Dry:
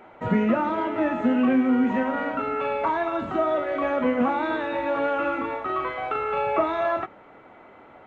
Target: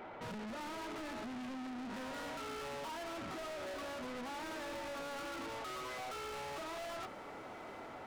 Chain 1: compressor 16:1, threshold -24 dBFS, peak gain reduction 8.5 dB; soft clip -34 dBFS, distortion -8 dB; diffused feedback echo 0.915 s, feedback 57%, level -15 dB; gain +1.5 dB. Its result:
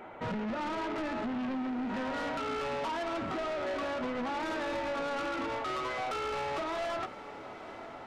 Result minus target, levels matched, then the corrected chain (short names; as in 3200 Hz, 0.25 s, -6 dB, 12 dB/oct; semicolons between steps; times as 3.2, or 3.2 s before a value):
soft clip: distortion -4 dB
compressor 16:1, threshold -24 dBFS, peak gain reduction 8.5 dB; soft clip -44.5 dBFS, distortion -4 dB; diffused feedback echo 0.915 s, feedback 57%, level -15 dB; gain +1.5 dB